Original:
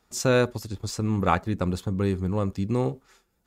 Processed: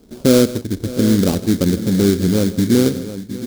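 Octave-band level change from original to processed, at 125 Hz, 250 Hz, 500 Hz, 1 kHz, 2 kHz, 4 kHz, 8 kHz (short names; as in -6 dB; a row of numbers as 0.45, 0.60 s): +7.0, +13.5, +8.5, -5.0, +1.5, +11.5, +10.0 dB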